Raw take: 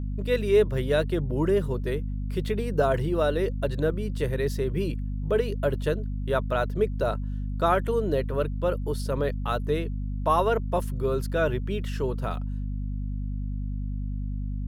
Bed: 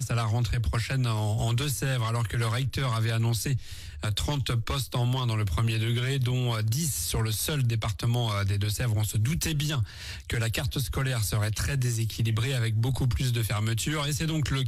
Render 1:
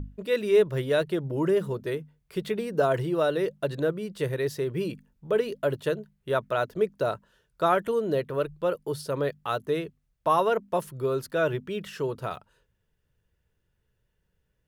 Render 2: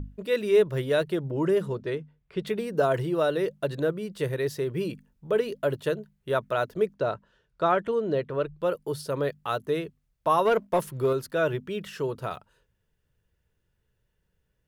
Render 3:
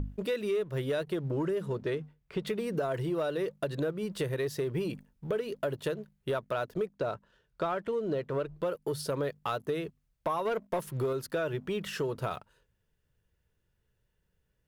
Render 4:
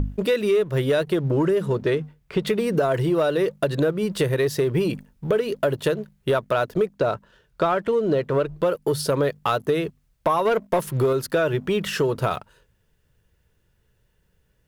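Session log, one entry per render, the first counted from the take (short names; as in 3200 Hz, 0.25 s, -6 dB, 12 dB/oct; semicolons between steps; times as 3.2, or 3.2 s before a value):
notches 50/100/150/200/250 Hz
1.3–2.47 low-pass opened by the level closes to 2700 Hz, open at -19 dBFS; 6.94–8.61 air absorption 96 m; 10.45–11.13 sample leveller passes 1
compressor 6:1, threshold -32 dBFS, peak gain reduction 15 dB; sample leveller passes 1
gain +10.5 dB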